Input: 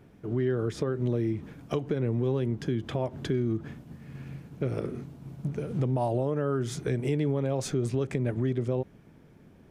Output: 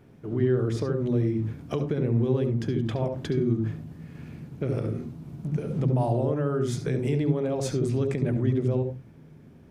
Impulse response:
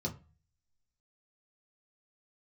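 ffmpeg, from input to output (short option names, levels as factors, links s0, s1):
-filter_complex "[0:a]asplit=2[s0][s1];[1:a]atrim=start_sample=2205,adelay=69[s2];[s1][s2]afir=irnorm=-1:irlink=0,volume=0.299[s3];[s0][s3]amix=inputs=2:normalize=0"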